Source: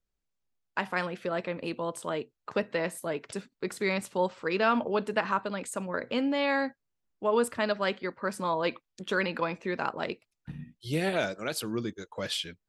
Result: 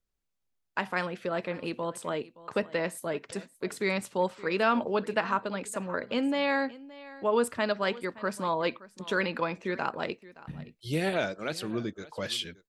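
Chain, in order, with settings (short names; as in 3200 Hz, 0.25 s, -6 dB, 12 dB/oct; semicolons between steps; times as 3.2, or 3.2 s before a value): 11.14–12.06 air absorption 53 m; echo 0.571 s -19 dB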